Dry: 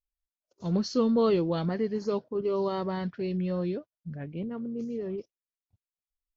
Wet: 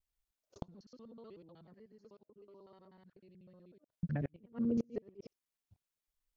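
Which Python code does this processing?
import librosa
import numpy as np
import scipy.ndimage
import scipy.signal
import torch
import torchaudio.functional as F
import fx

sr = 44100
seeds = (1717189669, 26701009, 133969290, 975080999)

y = fx.local_reverse(x, sr, ms=62.0)
y = fx.gate_flip(y, sr, shuts_db=-27.0, range_db=-33)
y = y * librosa.db_to_amplitude(3.0)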